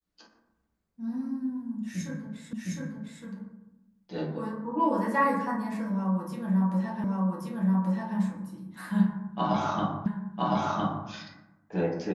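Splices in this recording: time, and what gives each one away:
2.53 repeat of the last 0.71 s
7.04 repeat of the last 1.13 s
10.06 repeat of the last 1.01 s

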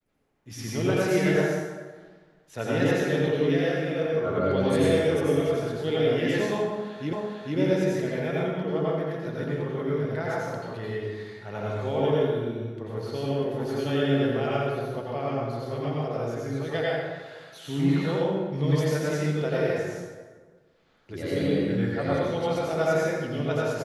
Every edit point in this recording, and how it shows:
7.13 repeat of the last 0.45 s

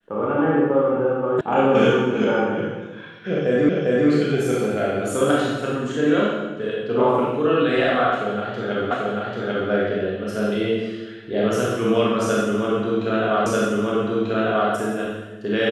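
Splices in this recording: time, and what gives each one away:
1.41 sound cut off
3.69 repeat of the last 0.4 s
8.91 repeat of the last 0.79 s
13.46 repeat of the last 1.24 s

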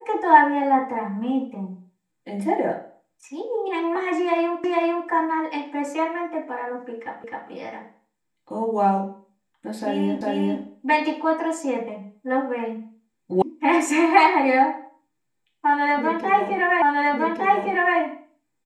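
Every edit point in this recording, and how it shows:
4.64 repeat of the last 0.45 s
7.24 repeat of the last 0.26 s
10.21 repeat of the last 0.4 s
13.42 sound cut off
16.82 repeat of the last 1.16 s

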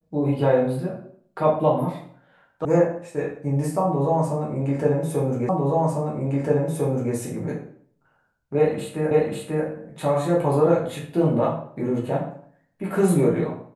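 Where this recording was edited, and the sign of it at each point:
2.65 sound cut off
5.49 repeat of the last 1.65 s
9.11 repeat of the last 0.54 s

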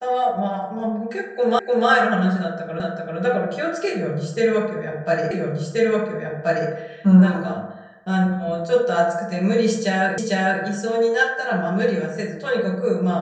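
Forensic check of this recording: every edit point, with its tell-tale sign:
1.59 repeat of the last 0.3 s
2.8 repeat of the last 0.39 s
5.31 repeat of the last 1.38 s
10.18 repeat of the last 0.45 s

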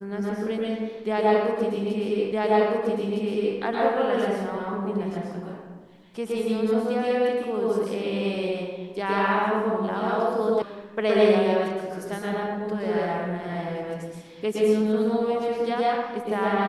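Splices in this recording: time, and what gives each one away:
2.32 repeat of the last 1.26 s
10.62 sound cut off

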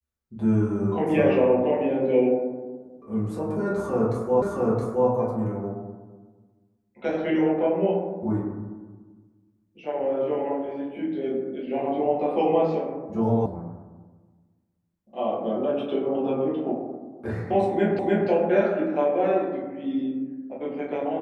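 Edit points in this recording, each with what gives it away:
4.42 repeat of the last 0.67 s
13.46 sound cut off
17.99 repeat of the last 0.3 s

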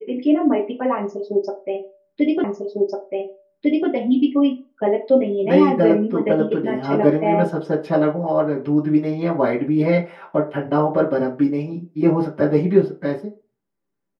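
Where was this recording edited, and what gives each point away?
2.44 repeat of the last 1.45 s

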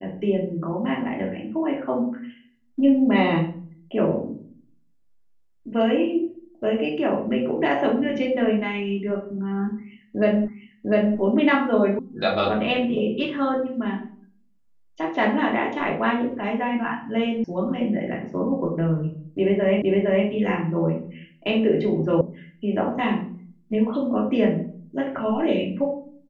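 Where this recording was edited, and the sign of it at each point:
10.48 repeat of the last 0.7 s
11.99 sound cut off
17.44 sound cut off
19.82 repeat of the last 0.46 s
22.21 sound cut off

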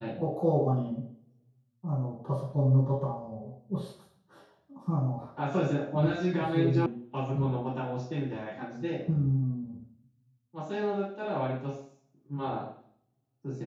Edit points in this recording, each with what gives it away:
6.86 sound cut off

